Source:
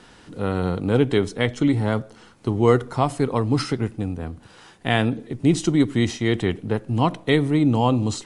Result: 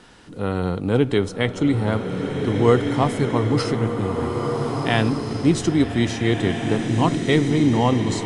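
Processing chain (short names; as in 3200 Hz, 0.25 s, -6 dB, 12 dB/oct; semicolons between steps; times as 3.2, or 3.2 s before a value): bloom reverb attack 1.75 s, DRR 3 dB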